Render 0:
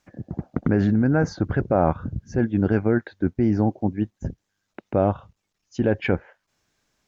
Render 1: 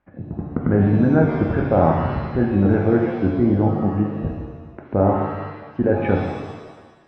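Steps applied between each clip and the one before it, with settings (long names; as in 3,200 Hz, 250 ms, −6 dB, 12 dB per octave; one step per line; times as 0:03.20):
Bessel low-pass filter 1,500 Hz, order 4
reverb with rising layers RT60 1.3 s, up +7 semitones, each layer −8 dB, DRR 0.5 dB
level +1.5 dB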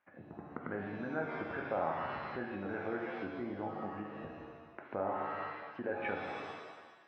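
downward compressor 2 to 1, threshold −26 dBFS, peak gain reduction 8.5 dB
resonant band-pass 2,100 Hz, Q 0.65
level −2.5 dB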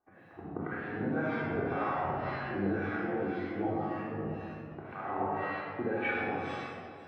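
two-band tremolo in antiphase 1.9 Hz, depth 100%, crossover 960 Hz
rectangular room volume 2,300 cubic metres, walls mixed, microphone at 3.6 metres
level +4 dB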